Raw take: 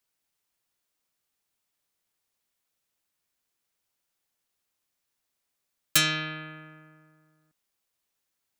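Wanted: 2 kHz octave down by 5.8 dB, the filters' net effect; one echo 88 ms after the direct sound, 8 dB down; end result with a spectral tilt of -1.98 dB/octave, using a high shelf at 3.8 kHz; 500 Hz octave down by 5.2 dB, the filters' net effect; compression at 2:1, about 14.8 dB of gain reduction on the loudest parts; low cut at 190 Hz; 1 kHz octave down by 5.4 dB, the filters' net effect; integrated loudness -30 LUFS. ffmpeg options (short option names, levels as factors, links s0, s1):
-af "highpass=190,equalizer=f=500:t=o:g=-5,equalizer=f=1000:t=o:g=-4,equalizer=f=2000:t=o:g=-5,highshelf=f=3800:g=-3.5,acompressor=threshold=0.00316:ratio=2,aecho=1:1:88:0.398,volume=5.62"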